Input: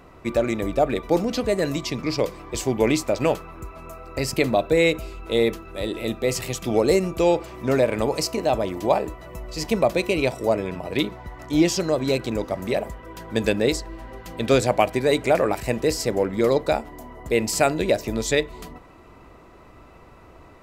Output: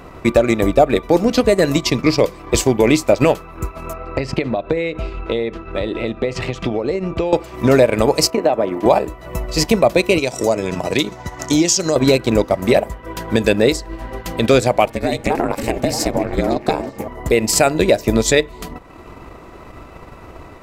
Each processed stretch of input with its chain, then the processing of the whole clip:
0:03.93–0:07.33: low-pass filter 3,200 Hz + downward compressor 5 to 1, threshold −28 dBFS
0:08.30–0:08.86: downward compressor 4 to 1, threshold −22 dBFS + three-way crossover with the lows and the highs turned down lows −16 dB, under 180 Hz, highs −14 dB, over 2,600 Hz
0:10.18–0:11.96: high-pass filter 77 Hz + parametric band 6,500 Hz +13.5 dB 0.9 octaves + downward compressor 2.5 to 1, threshold −26 dBFS
0:14.85–0:17.08: ring modulation 170 Hz + downward compressor, threshold −24 dBFS + echo through a band-pass that steps 315 ms, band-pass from 260 Hz, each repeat 1.4 octaves, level −3 dB
whole clip: transient designer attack +5 dB, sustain −7 dB; boost into a limiter +11 dB; level −1 dB

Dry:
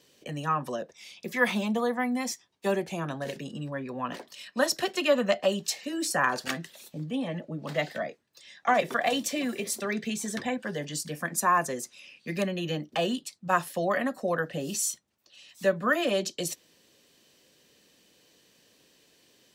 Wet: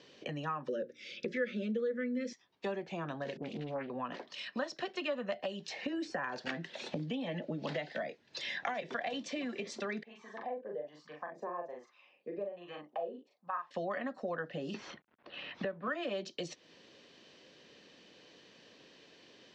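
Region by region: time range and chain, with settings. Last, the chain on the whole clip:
0:00.68–0:02.33: elliptic band-stop filter 550–1,400 Hz + parametric band 460 Hz +11 dB 2.9 octaves + mains-hum notches 60/120/180/240/300/360 Hz
0:03.37–0:03.90: parametric band 570 Hz +6 dB 0.63 octaves + all-pass dispersion highs, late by 64 ms, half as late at 1,000 Hz + highs frequency-modulated by the lows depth 0.48 ms
0:05.32–0:09.14: parametric band 1,200 Hz −7.5 dB 0.26 octaves + multiband upward and downward compressor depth 100%
0:10.03–0:13.71: LFO wah 1.2 Hz 450–1,200 Hz, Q 4.3 + notch filter 1,400 Hz, Q 7.1 + double-tracking delay 40 ms −3 dB
0:14.74–0:15.88: mu-law and A-law mismatch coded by A + high-frequency loss of the air 270 metres + multiband upward and downward compressor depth 70%
whole clip: Bessel low-pass filter 3,600 Hz, order 8; low-shelf EQ 100 Hz −11.5 dB; downward compressor 3 to 1, threshold −46 dBFS; level +6 dB

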